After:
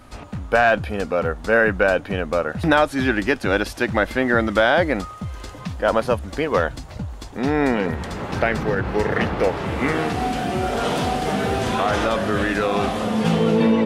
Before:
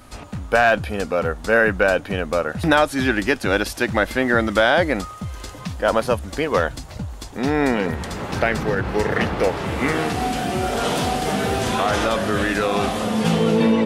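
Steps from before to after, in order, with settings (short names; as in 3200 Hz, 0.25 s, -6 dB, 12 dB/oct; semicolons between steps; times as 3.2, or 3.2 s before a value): high shelf 4800 Hz -7.5 dB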